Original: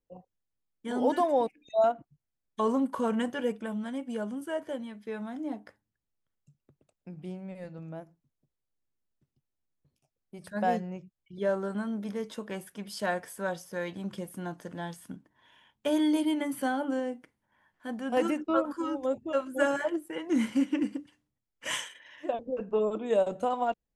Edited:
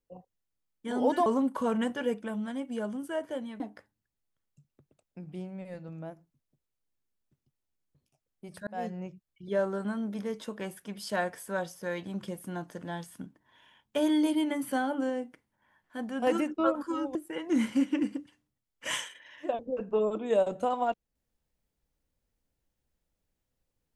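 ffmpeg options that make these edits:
ffmpeg -i in.wav -filter_complex "[0:a]asplit=5[link_01][link_02][link_03][link_04][link_05];[link_01]atrim=end=1.262[link_06];[link_02]atrim=start=2.638:end=4.982[link_07];[link_03]atrim=start=5.498:end=10.57,asetpts=PTS-STARTPTS,afade=type=out:start_time=5.068:duration=0.004:curve=hsin[link_08];[link_04]atrim=start=10.57:end=19.052,asetpts=PTS-STARTPTS,afade=type=in:duration=0.33[link_09];[link_05]atrim=start=19.948[link_10];[link_06][link_07]acrossfade=duration=0.004:curve1=hsin:curve2=hsin[link_11];[link_08][link_09]concat=n=2:v=0:a=1[link_12];[link_11][link_12]acrossfade=duration=0.004:curve1=hsin:curve2=hsin[link_13];[link_13][link_10]acrossfade=duration=0.004:curve1=hsin:curve2=hsin" out.wav

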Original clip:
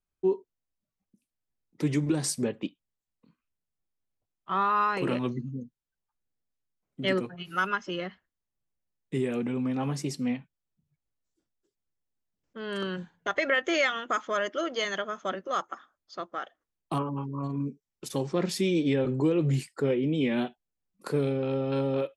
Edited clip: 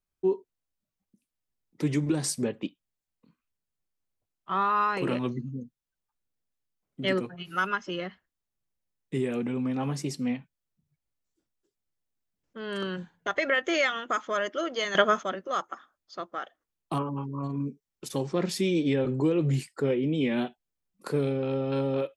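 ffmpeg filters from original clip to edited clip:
ffmpeg -i in.wav -filter_complex "[0:a]asplit=3[link_01][link_02][link_03];[link_01]atrim=end=14.952[link_04];[link_02]atrim=start=14.948:end=15.232,asetpts=PTS-STARTPTS,volume=11.5dB[link_05];[link_03]atrim=start=15.228[link_06];[link_04][link_05]acrossfade=duration=0.004:curve1=hsin:curve2=hsin[link_07];[link_07][link_06]acrossfade=duration=0.004:curve1=hsin:curve2=hsin" out.wav

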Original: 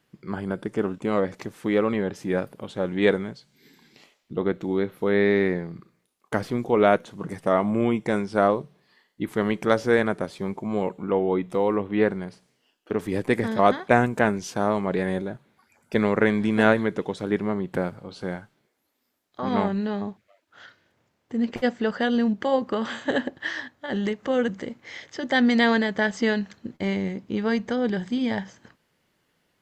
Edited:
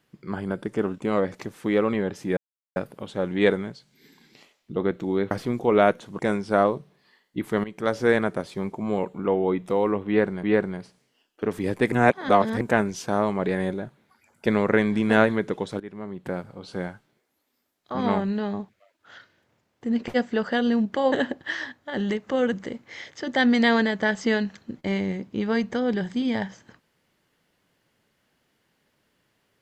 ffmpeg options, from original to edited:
ffmpeg -i in.wav -filter_complex "[0:a]asplit=10[link_01][link_02][link_03][link_04][link_05][link_06][link_07][link_08][link_09][link_10];[link_01]atrim=end=2.37,asetpts=PTS-STARTPTS,afade=type=out:start_time=2.366:duration=0.004:curve=hsin,apad=pad_dur=0.39[link_11];[link_02]atrim=start=2.37:end=4.922,asetpts=PTS-STARTPTS,afade=type=in:duration=0.004:curve=hsin[link_12];[link_03]atrim=start=6.358:end=7.242[link_13];[link_04]atrim=start=8.028:end=9.48,asetpts=PTS-STARTPTS,afade=type=out:start_time=1.448:duration=0.004:curve=hsin:silence=0.16788[link_14];[link_05]atrim=start=9.48:end=12.272,asetpts=PTS-STARTPTS,afade=type=in:duration=0.43:silence=0.16788[link_15];[link_06]atrim=start=11.908:end=13.402[link_16];[link_07]atrim=start=13.398:end=14.092,asetpts=PTS-STARTPTS,areverse[link_17];[link_08]atrim=start=14.088:end=17.28,asetpts=PTS-STARTPTS,afade=type=out:start_time=3.188:duration=0.004:curve=hsin:silence=0.112202[link_18];[link_09]atrim=start=17.28:end=22.602,asetpts=PTS-STARTPTS,afade=type=in:duration=0.91:silence=0.112202[link_19];[link_10]atrim=start=23.078[link_20];[link_11][link_12]concat=n=2:v=0:a=1[link_21];[link_21][link_13]acrossfade=duration=0.004:curve1=hsin:curve2=hsin[link_22];[link_14][link_15]concat=n=2:v=0:a=1[link_23];[link_22][link_23]acrossfade=duration=0.004:curve1=hsin:curve2=hsin[link_24];[link_24][link_16]acrossfade=duration=0.004:curve1=hsin:curve2=hsin[link_25];[link_25][link_17]acrossfade=duration=0.004:curve1=hsin:curve2=hsin[link_26];[link_18][link_19]concat=n=2:v=0:a=1[link_27];[link_26][link_27]acrossfade=duration=0.004:curve1=hsin:curve2=hsin[link_28];[link_28][link_20]acrossfade=duration=0.004:curve1=hsin:curve2=hsin" out.wav

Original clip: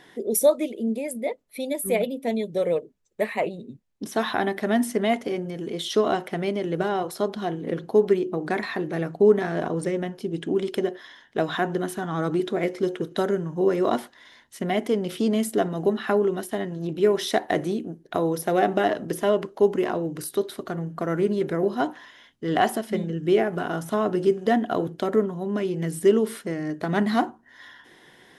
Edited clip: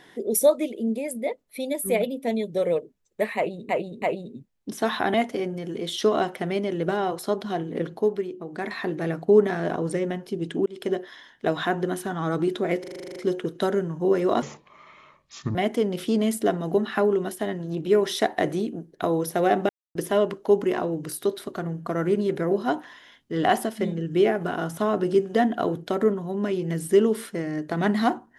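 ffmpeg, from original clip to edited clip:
ffmpeg -i in.wav -filter_complex "[0:a]asplit=20[link_01][link_02][link_03][link_04][link_05][link_06][link_07][link_08][link_09][link_10][link_11][link_12][link_13][link_14][link_15][link_16][link_17][link_18][link_19][link_20];[link_01]atrim=end=3.692[link_21];[link_02]atrim=start=3.358:end=3.692[link_22];[link_03]atrim=start=3.358:end=4.482[link_23];[link_04]atrim=start=5.058:end=8.13,asetpts=PTS-STARTPTS,afade=type=out:start_time=2.702:duration=0.37:silence=0.375837[link_24];[link_05]atrim=start=8.13:end=8.43,asetpts=PTS-STARTPTS,volume=-8.5dB[link_25];[link_06]atrim=start=8.43:end=10.58,asetpts=PTS-STARTPTS,afade=type=in:duration=0.37:silence=0.375837,afade=type=out:start_time=2.146:duration=0.004:curve=hsin[link_26];[link_07]atrim=start=10.58:end=12.762,asetpts=PTS-STARTPTS,afade=type=in:duration=0.27[link_27];[link_08]atrim=start=12.718:end=12.762[link_28];[link_09]atrim=start=12.718:end=12.762[link_29];[link_10]atrim=start=12.718:end=12.762[link_30];[link_11]atrim=start=12.718:end=12.762[link_31];[link_12]atrim=start=12.718:end=12.762[link_32];[link_13]atrim=start=12.718:end=12.762[link_33];[link_14]atrim=start=12.718:end=12.762[link_34];[link_15]atrim=start=12.718:end=12.762[link_35];[link_16]atrim=start=12.718:end=13.984[link_36];[link_17]atrim=start=13.98:end=14.67,asetpts=PTS-STARTPTS,asetrate=26901,aresample=44100[link_37];[link_18]atrim=start=14.666:end=18.81,asetpts=PTS-STARTPTS,afade=type=out:start_time=4.14:duration=0.004:curve=hsin[link_38];[link_19]atrim=start=18.81:end=19.07,asetpts=PTS-STARTPTS,volume=0[link_39];[link_20]atrim=start=19.07,asetpts=PTS-STARTPTS,afade=type=in:duration=0.004:curve=hsin[link_40];[link_21][link_22]acrossfade=duration=0.004:curve1=hsin:curve2=hsin[link_41];[link_41][link_23]acrossfade=duration=0.004:curve1=hsin:curve2=hsin[link_42];[link_24][link_25][link_26][link_27]concat=n=4:v=0:a=1[link_43];[link_42][link_43]acrossfade=duration=0.004:curve1=hsin:curve2=hsin[link_44];[link_44][link_28]acrossfade=duration=0.004:curve1=hsin:curve2=hsin[link_45];[link_45][link_29]acrossfade=duration=0.004:curve1=hsin:curve2=hsin[link_46];[link_46][link_30]acrossfade=duration=0.004:curve1=hsin:curve2=hsin[link_47];[link_47][link_31]acrossfade=duration=0.004:curve1=hsin:curve2=hsin[link_48];[link_48][link_32]acrossfade=duration=0.004:curve1=hsin:curve2=hsin[link_49];[link_49][link_33]acrossfade=duration=0.004:curve1=hsin:curve2=hsin[link_50];[link_50][link_34]acrossfade=duration=0.004:curve1=hsin:curve2=hsin[link_51];[link_51][link_35]acrossfade=duration=0.004:curve1=hsin:curve2=hsin[link_52];[link_52][link_36]acrossfade=duration=0.004:curve1=hsin:curve2=hsin[link_53];[link_53][link_37]acrossfade=duration=0.004:curve1=hsin:curve2=hsin[link_54];[link_38][link_39][link_40]concat=n=3:v=0:a=1[link_55];[link_54][link_55]acrossfade=duration=0.004:curve1=hsin:curve2=hsin" out.wav

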